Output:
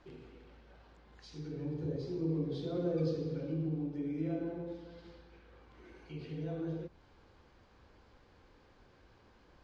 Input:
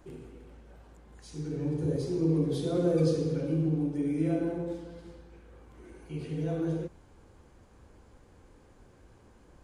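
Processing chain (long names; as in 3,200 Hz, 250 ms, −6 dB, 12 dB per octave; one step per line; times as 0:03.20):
Chebyshev low-pass filter 4,700 Hz, order 3
one half of a high-frequency compander encoder only
level −7.5 dB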